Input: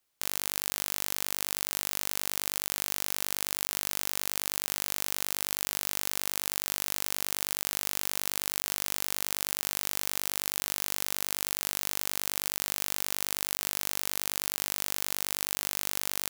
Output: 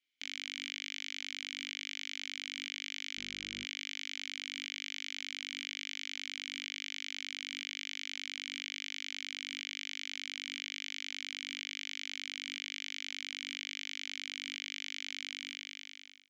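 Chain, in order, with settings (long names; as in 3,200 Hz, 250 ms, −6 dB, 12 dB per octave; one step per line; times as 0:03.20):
fade-out on the ending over 1.03 s
tilt shelving filter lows −7.5 dB, about 830 Hz
0:03.16–0:03.63: hum with harmonics 50 Hz, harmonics 33, −40 dBFS −8 dB per octave
formant filter i
downsampling to 16,000 Hz
level +5 dB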